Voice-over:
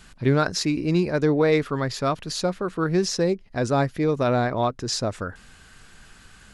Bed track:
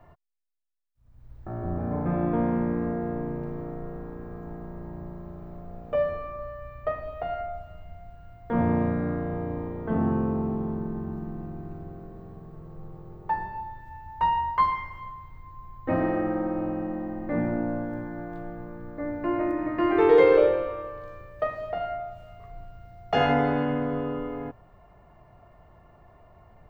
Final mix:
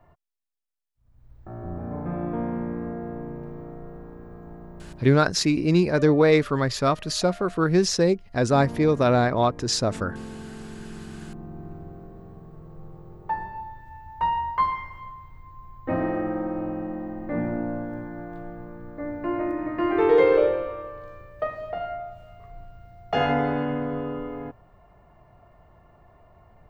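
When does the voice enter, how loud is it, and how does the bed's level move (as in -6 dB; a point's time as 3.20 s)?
4.80 s, +2.0 dB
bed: 4.82 s -3.5 dB
5.29 s -11.5 dB
10.49 s -11.5 dB
11.64 s -0.5 dB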